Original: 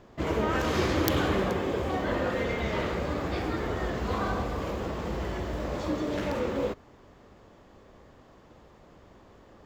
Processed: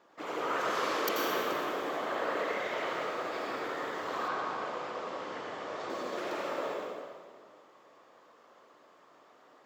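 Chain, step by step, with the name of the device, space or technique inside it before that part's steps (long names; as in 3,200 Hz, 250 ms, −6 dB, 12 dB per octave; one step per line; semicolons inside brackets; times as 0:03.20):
0:00.81–0:01.30: high-pass filter 140 Hz
whispering ghost (random phases in short frames; high-pass filter 480 Hz 12 dB per octave; convolution reverb RT60 1.8 s, pre-delay 79 ms, DRR −1.5 dB)
parametric band 1,200 Hz +5 dB 0.48 octaves
0:04.28–0:05.90: low-pass filter 6,400 Hz 12 dB per octave
level −6.5 dB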